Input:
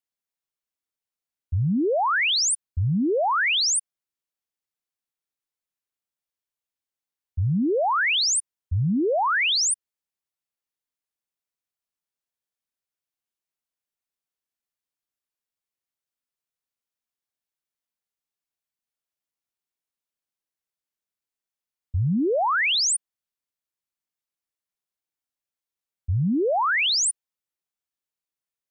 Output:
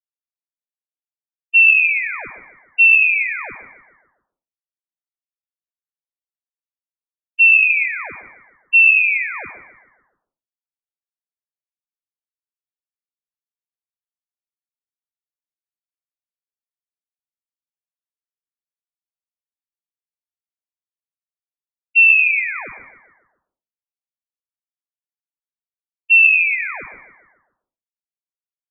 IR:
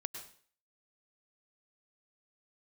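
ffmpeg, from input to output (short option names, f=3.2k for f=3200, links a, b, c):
-filter_complex "[0:a]agate=range=-33dB:threshold=-17dB:ratio=3:detection=peak,equalizer=f=81:w=0.39:g=10,acrossover=split=360|780[a][b][c];[c]acompressor=threshold=-38dB:ratio=6[d];[a][b][d]amix=inputs=3:normalize=0,asplit=6[e][f][g][h][i][j];[f]adelay=145,afreqshift=64,volume=-13dB[k];[g]adelay=290,afreqshift=128,volume=-19dB[l];[h]adelay=435,afreqshift=192,volume=-25dB[m];[i]adelay=580,afreqshift=256,volume=-31.1dB[n];[j]adelay=725,afreqshift=320,volume=-37.1dB[o];[e][k][l][m][n][o]amix=inputs=6:normalize=0,asplit=2[p][q];[1:a]atrim=start_sample=2205,afade=t=out:st=0.37:d=0.01,atrim=end_sample=16758,lowshelf=f=480:g=9.5[r];[q][r]afir=irnorm=-1:irlink=0,volume=5.5dB[s];[p][s]amix=inputs=2:normalize=0,lowpass=f=2.4k:t=q:w=0.5098,lowpass=f=2.4k:t=q:w=0.6013,lowpass=f=2.4k:t=q:w=0.9,lowpass=f=2.4k:t=q:w=2.563,afreqshift=-2800,volume=-4.5dB"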